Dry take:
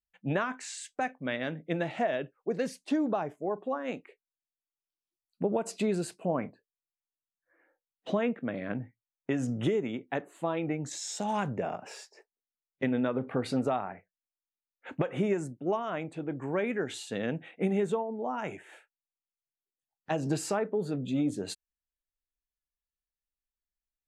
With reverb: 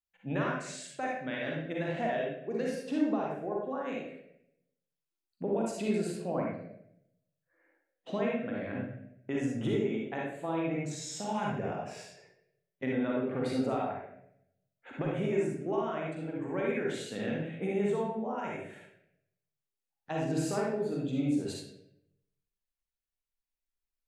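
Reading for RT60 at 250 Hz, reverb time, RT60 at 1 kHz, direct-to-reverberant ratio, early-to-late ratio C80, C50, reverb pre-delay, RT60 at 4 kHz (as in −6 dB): 0.90 s, 0.80 s, 0.65 s, −3.5 dB, 4.0 dB, −1.5 dB, 39 ms, 0.60 s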